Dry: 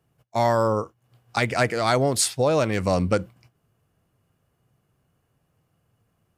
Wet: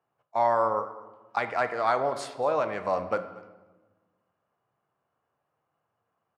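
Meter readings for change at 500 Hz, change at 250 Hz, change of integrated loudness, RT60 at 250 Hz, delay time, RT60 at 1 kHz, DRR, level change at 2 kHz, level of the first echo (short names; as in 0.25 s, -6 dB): -5.0 dB, -13.5 dB, -5.0 dB, 1.7 s, 0.235 s, 1.1 s, 9.0 dB, -6.0 dB, -21.5 dB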